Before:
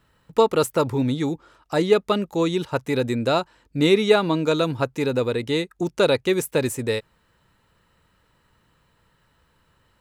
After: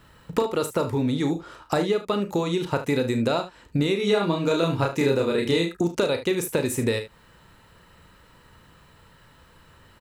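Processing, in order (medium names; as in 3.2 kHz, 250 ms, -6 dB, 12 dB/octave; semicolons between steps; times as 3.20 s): compression 10:1, threshold -30 dBFS, peak gain reduction 19.5 dB; 3.96–5.73 s: doubling 30 ms -2 dB; early reflections 35 ms -9.5 dB, 47 ms -14.5 dB, 74 ms -13.5 dB; trim +9 dB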